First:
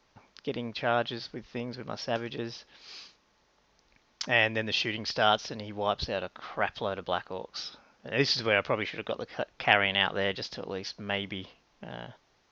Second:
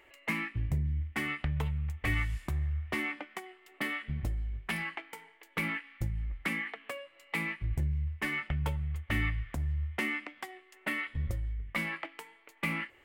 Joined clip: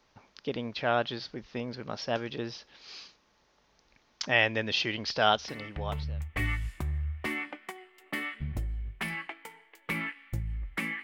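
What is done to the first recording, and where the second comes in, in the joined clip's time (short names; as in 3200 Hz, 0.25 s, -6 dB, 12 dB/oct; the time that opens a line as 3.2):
first
5.76 switch to second from 1.44 s, crossfade 0.94 s linear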